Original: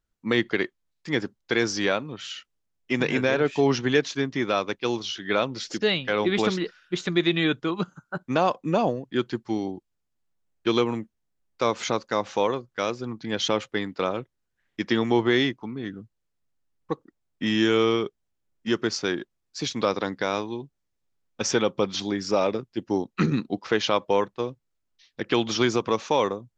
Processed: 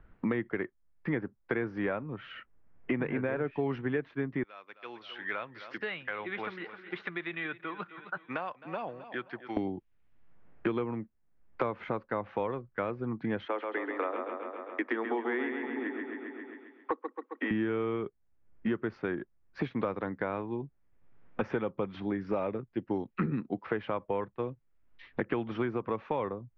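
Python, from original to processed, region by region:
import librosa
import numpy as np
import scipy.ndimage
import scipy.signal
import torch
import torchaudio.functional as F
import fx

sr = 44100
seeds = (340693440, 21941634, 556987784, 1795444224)

y = fx.chain(x, sr, fx.bandpass_q(hz=5200.0, q=2.1),
    fx.echo_feedback(ms=262, feedback_pct=38, wet_db=-18.0), at=(4.43, 9.57))
y = fx.chain(y, sr, fx.steep_highpass(hz=240.0, slope=96),
    fx.low_shelf(hz=420.0, db=-11.0),
    fx.echo_bbd(ms=134, stages=4096, feedback_pct=50, wet_db=-6.0), at=(13.45, 17.51))
y = scipy.signal.sosfilt(scipy.signal.butter(4, 2100.0, 'lowpass', fs=sr, output='sos'), y)
y = fx.low_shelf(y, sr, hz=97.0, db=9.0)
y = fx.band_squash(y, sr, depth_pct=100)
y = F.gain(torch.from_numpy(y), -8.0).numpy()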